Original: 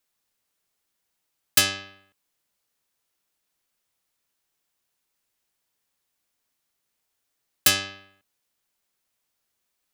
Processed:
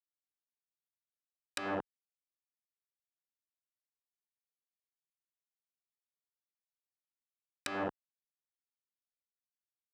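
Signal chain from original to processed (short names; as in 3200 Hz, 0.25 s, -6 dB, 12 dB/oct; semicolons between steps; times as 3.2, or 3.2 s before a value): Schmitt trigger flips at -33.5 dBFS; weighting filter A; treble ducked by the level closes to 820 Hz, closed at -42 dBFS; gain +9.5 dB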